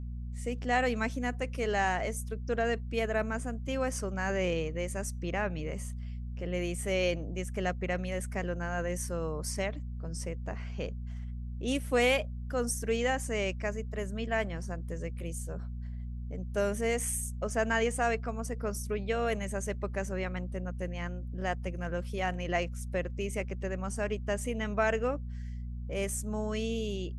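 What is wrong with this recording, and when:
hum 60 Hz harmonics 4 -38 dBFS

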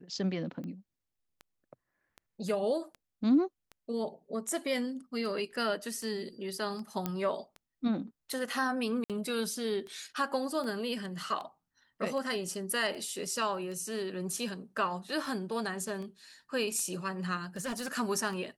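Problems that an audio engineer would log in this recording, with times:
tick 78 rpm -31 dBFS
7.06 s: pop -17 dBFS
9.04–9.10 s: dropout 57 ms
17.44–17.88 s: clipped -32 dBFS

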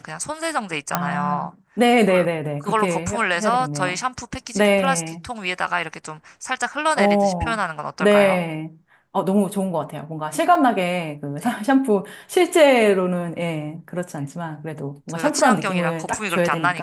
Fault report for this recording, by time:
0.95 s: pop -3 dBFS
10.55 s: dropout 3.7 ms

